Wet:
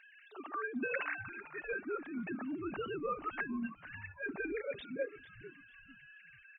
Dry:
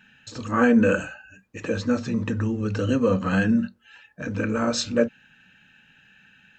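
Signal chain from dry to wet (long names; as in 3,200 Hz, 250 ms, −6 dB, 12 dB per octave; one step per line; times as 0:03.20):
three sine waves on the formant tracks
gain on a spectral selection 0:04.51–0:05.19, 610–1,600 Hz −21 dB
notch comb filter 500 Hz
reversed playback
downward compressor 6 to 1, threshold −33 dBFS, peak gain reduction 21.5 dB
reversed playback
low-shelf EQ 300 Hz −9 dB
on a send: echo with shifted repeats 447 ms, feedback 34%, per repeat −140 Hz, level −15 dB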